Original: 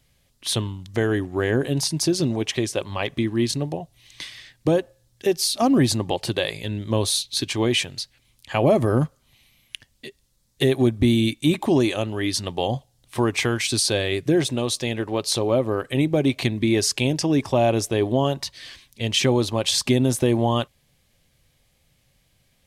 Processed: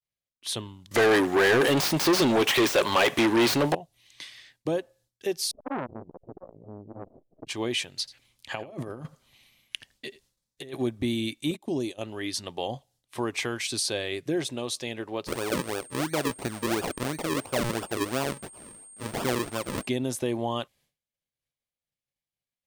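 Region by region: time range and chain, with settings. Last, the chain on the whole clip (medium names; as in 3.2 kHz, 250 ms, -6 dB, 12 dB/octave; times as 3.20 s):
0.91–3.75 s: dead-time distortion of 0.053 ms + treble shelf 8.8 kHz +11 dB + overdrive pedal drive 33 dB, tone 3.2 kHz, clips at -4.5 dBFS
5.51–7.47 s: comb filter that takes the minimum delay 0.46 ms + Chebyshev low-pass 660 Hz, order 4 + transformer saturation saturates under 980 Hz
7.99–10.77 s: compressor with a negative ratio -25 dBFS, ratio -0.5 + treble shelf 9.5 kHz -5.5 dB + delay 84 ms -17.5 dB
11.51–12.01 s: peaking EQ 1.5 kHz -12 dB 2.1 oct + gate -30 dBFS, range -14 dB
15.26–19.86 s: decimation with a swept rate 42× 2.9 Hz + whistle 8.6 kHz -40 dBFS
whole clip: expander -49 dBFS; bass shelf 150 Hz -11.5 dB; trim -6.5 dB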